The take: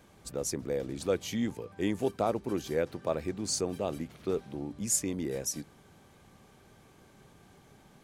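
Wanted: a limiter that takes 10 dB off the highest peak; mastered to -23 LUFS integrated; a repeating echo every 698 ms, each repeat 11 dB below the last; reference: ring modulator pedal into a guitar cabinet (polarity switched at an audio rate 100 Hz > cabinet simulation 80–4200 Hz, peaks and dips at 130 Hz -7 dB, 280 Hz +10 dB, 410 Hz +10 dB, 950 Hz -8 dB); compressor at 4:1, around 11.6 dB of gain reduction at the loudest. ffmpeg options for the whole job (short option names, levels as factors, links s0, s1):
-af "acompressor=threshold=0.0126:ratio=4,alimiter=level_in=2.82:limit=0.0631:level=0:latency=1,volume=0.355,aecho=1:1:698|1396|2094:0.282|0.0789|0.0221,aeval=exprs='val(0)*sgn(sin(2*PI*100*n/s))':c=same,highpass=80,equalizer=f=130:t=q:w=4:g=-7,equalizer=f=280:t=q:w=4:g=10,equalizer=f=410:t=q:w=4:g=10,equalizer=f=950:t=q:w=4:g=-8,lowpass=f=4200:w=0.5412,lowpass=f=4200:w=1.3066,volume=7.08"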